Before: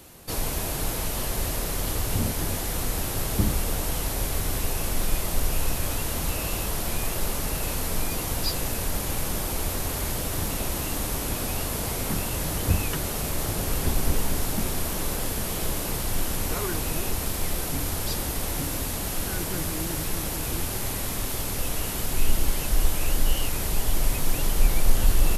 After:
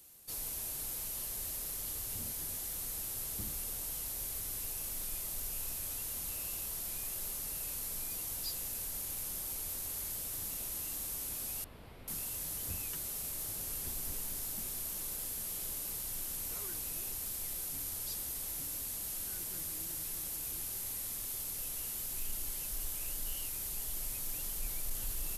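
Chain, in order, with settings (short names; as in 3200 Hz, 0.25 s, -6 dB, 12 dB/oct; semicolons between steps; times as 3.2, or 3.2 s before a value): pre-emphasis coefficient 0.8; soft clip -19.5 dBFS, distortion -26 dB; 11.64–12.08 air absorption 430 m; gain -7.5 dB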